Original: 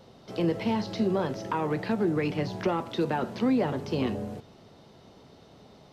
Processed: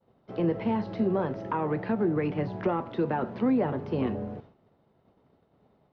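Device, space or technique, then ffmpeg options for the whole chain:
hearing-loss simulation: -af "lowpass=1.9k,agate=range=-33dB:threshold=-44dB:ratio=3:detection=peak"

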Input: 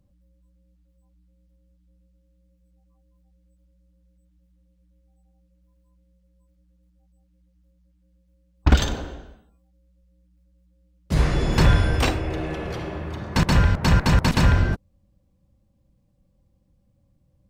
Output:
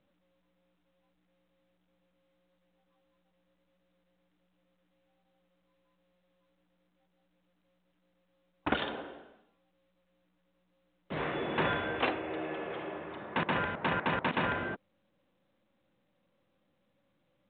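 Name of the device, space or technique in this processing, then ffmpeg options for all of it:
telephone: -af "highpass=330,lowpass=3.3k,volume=-5dB" -ar 8000 -c:a pcm_mulaw

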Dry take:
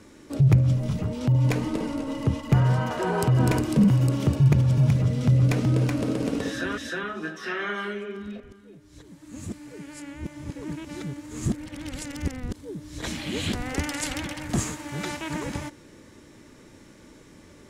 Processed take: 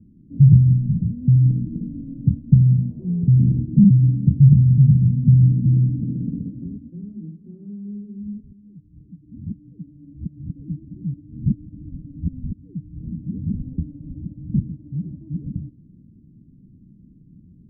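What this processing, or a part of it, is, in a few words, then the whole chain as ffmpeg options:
the neighbour's flat through the wall: -af "lowpass=f=220:w=0.5412,lowpass=f=220:w=1.3066,equalizer=f=170:t=o:w=0.99:g=8,volume=2dB"

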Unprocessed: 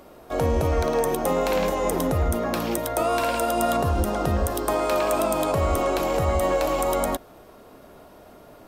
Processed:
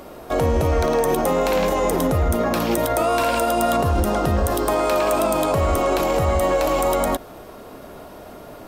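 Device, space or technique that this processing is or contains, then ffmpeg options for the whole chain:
clipper into limiter: -af "asoftclip=type=hard:threshold=-15dB,alimiter=limit=-20.5dB:level=0:latency=1:release=54,volume=8.5dB"

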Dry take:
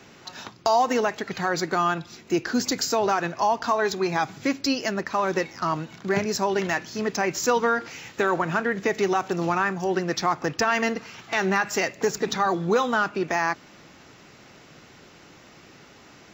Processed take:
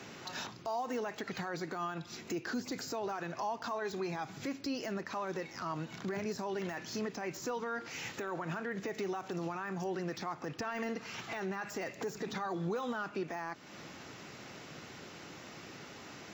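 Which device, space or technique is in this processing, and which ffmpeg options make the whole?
podcast mastering chain: -af "highpass=76,deesser=0.9,acompressor=threshold=-36dB:ratio=2.5,alimiter=level_in=5dB:limit=-24dB:level=0:latency=1:release=34,volume=-5dB,volume=1dB" -ar 44100 -c:a libmp3lame -b:a 96k

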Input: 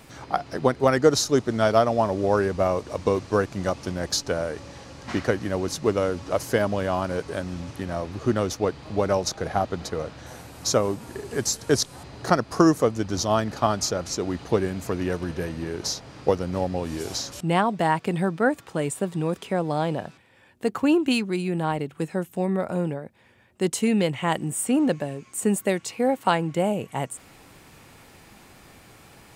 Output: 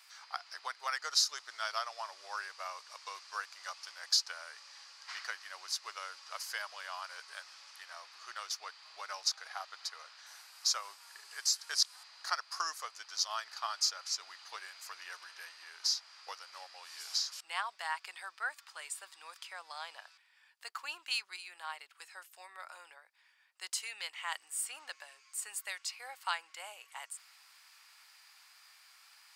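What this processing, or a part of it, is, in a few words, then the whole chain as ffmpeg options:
headphones lying on a table: -af "highpass=f=1.1k:w=0.5412,highpass=f=1.1k:w=1.3066,equalizer=f=4.8k:t=o:w=0.38:g=10,volume=-8.5dB"

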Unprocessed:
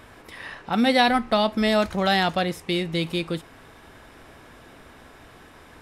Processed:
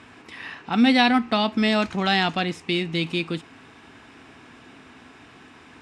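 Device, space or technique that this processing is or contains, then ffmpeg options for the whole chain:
car door speaker: -af "highpass=99,equalizer=f=260:t=q:w=4:g=6,equalizer=f=560:t=q:w=4:g=-9,equalizer=f=2.6k:t=q:w=4:g=6,lowpass=f=8.3k:w=0.5412,lowpass=f=8.3k:w=1.3066"

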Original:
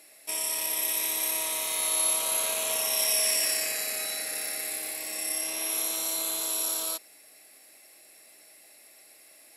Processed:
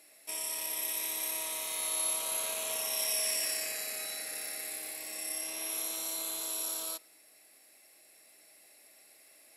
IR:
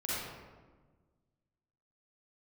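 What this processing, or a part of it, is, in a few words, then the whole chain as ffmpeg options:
ducked reverb: -filter_complex "[0:a]asplit=3[a][b][c];[1:a]atrim=start_sample=2205[d];[b][d]afir=irnorm=-1:irlink=0[e];[c]apad=whole_len=421932[f];[e][f]sidechaincompress=threshold=-46dB:ratio=8:attack=16:release=1380,volume=-11.5dB[g];[a][g]amix=inputs=2:normalize=0,volume=-6.5dB"

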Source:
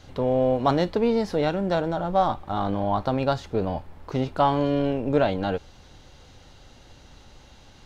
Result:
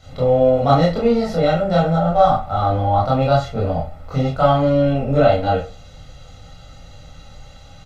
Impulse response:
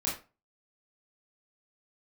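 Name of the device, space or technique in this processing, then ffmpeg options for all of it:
microphone above a desk: -filter_complex "[0:a]aecho=1:1:1.5:0.7[a];[1:a]atrim=start_sample=2205[b];[a][b]afir=irnorm=-1:irlink=0,volume=-1.5dB"

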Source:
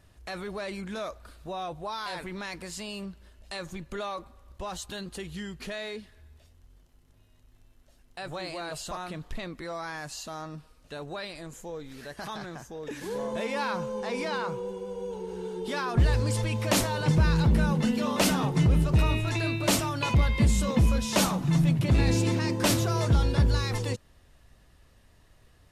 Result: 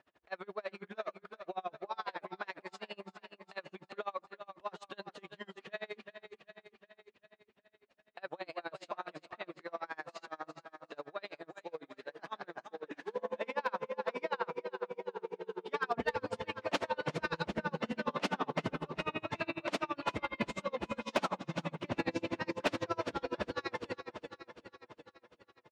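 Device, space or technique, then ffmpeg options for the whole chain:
helicopter radio: -filter_complex "[0:a]asettb=1/sr,asplit=3[a][b][c];[a]atrim=end=15.734[d];[b]atrim=start=15.73:end=16.16,asetpts=PTS-STARTPTS,afade=t=in:d=0.004:c=qsin,afade=t=out:st=0.426:d=0.004:c=qsin,aecho=1:1:4.4:0.99,atrim=end_sample=18963[e];[c]atrim=start=16.156[f];[d][e]acrossfade=d=0.004:c1=hsin:c2=qsin[g];[g][f]acrossfade=d=0.004:c1=qsin:c2=hsin,asettb=1/sr,asplit=3[h][i][j];[h]atrim=end=17.034[k];[i]atrim=start=17.03:end=17.5,asetpts=PTS-STARTPTS,afade=t=in:d=0.004:c=qsin,afade=t=out:st=0.466:d=0.004:c=qsin,highshelf=f=6k:g=11[l];[j]atrim=start=17.496[m];[k][l]acrossfade=d=0.004:c1=hsin:c2=qsin[n];[n][m]acrossfade=d=0.004:c1=qsin:c2=hsin,highpass=370,lowpass=2.7k,aecho=1:1:379|758|1137|1516|1895|2274|2653:0.335|0.201|0.121|0.0724|0.0434|0.026|0.0156,aeval=exprs='val(0)*pow(10,-33*(0.5-0.5*cos(2*PI*12*n/s))/20)':c=same,asoftclip=type=hard:threshold=-24dB,volume=1.5dB"

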